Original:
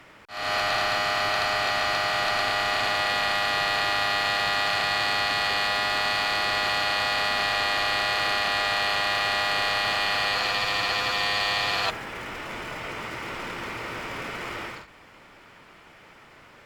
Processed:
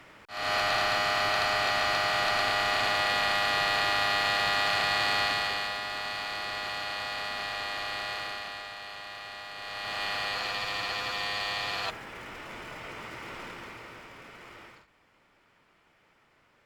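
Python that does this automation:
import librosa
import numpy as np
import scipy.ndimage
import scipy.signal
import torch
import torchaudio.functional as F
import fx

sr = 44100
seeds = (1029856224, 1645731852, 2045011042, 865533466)

y = fx.gain(x, sr, db=fx.line((5.24, -2.0), (5.81, -9.5), (8.13, -9.5), (8.75, -17.0), (9.54, -17.0), (10.03, -7.0), (13.42, -7.0), (14.15, -14.5)))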